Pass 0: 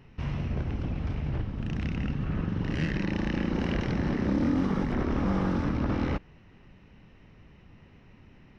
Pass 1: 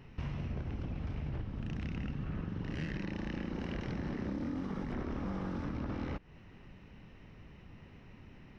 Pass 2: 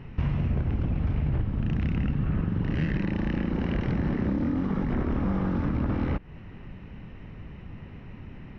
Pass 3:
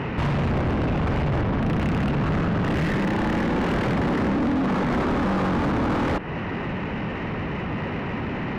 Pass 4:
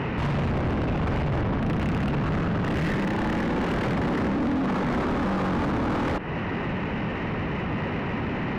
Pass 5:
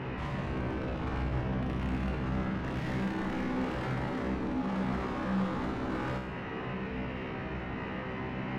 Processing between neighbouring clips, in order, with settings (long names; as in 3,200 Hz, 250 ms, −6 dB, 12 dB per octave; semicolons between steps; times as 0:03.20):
downward compressor 6 to 1, threshold −35 dBFS, peak gain reduction 12.5 dB
bass and treble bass +4 dB, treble −12 dB; level +8.5 dB
mid-hump overdrive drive 36 dB, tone 1,200 Hz, clips at −15.5 dBFS
brickwall limiter −20 dBFS, peak gain reduction 4 dB
tuned comb filter 64 Hz, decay 0.9 s, harmonics all, mix 90%; level +3 dB